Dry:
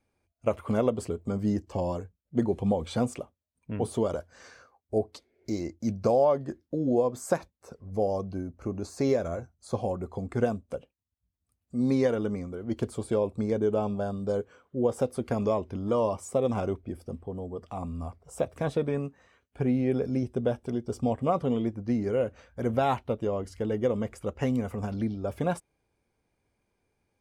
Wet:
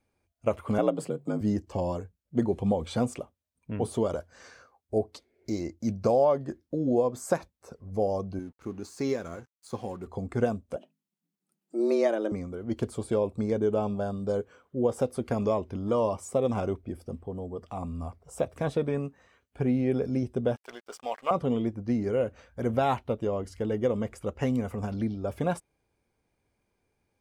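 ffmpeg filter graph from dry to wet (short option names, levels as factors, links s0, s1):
-filter_complex "[0:a]asettb=1/sr,asplit=3[s0][s1][s2];[s0]atrim=end=0.784[s3];[s1]atrim=start=0.78:end=1.41,asetpts=PTS-STARTPTS,afade=t=in:d=0.004:c=qsin,afade=t=out:st=0.626:d=0.004:c=qsin,equalizer=f=5800:w=6.5:g=-6.5,afreqshift=58[s4];[s2]atrim=start=1.406[s5];[s3][s4]acrossfade=d=0.004:c1=hsin:c2=qsin[s6];[s6][s5]acrossfade=d=0.004:c1=qsin:c2=hsin,asettb=1/sr,asplit=3[s7][s8][s9];[s7]atrim=end=8.394[s10];[s8]atrim=start=8.39:end=10.07,asetpts=PTS-STARTPTS,afade=t=in:d=0.004:c=qsin,afade=t=out:st=1.676:d=0.004:c=qsin,highpass=f=210:p=1,aeval=exprs='sgn(val(0))*max(abs(val(0))-0.00133,0)':c=same,equalizer=f=610:w=2.3:g=-10[s11];[s9]atrim=start=10.066[s12];[s10][s11]acrossfade=d=0.004:c1=hsin:c2=qsin[s13];[s13][s12]acrossfade=d=0.004:c1=qsin:c2=hsin,asettb=1/sr,asplit=3[s14][s15][s16];[s14]atrim=end=10.764[s17];[s15]atrim=start=10.76:end=12.32,asetpts=PTS-STARTPTS,afade=t=in:d=0.004:c=qsin,afade=t=out:st=1.556:d=0.004:c=qsin,equalizer=f=66:t=o:w=0.39:g=-12,bandreject=f=50:t=h:w=6,bandreject=f=100:t=h:w=6,bandreject=f=150:t=h:w=6,afreqshift=110[s18];[s16]atrim=start=12.316[s19];[s17][s18]acrossfade=d=0.004:c1=hsin:c2=qsin[s20];[s20][s19]acrossfade=d=0.004:c1=qsin:c2=hsin,asettb=1/sr,asplit=3[s21][s22][s23];[s21]atrim=end=20.564[s24];[s22]atrim=start=20.56:end=21.31,asetpts=PTS-STARTPTS,afade=t=in:d=0.004:c=qsin,afade=t=out:st=0.746:d=0.004:c=qsin,highpass=780,equalizer=f=1900:w=0.58:g=9.5,aeval=exprs='sgn(val(0))*max(abs(val(0))-0.00188,0)':c=same[s25];[s23]atrim=start=21.306[s26];[s24][s25]acrossfade=d=0.004:c1=hsin:c2=qsin[s27];[s27][s26]acrossfade=d=0.004:c1=qsin:c2=hsin"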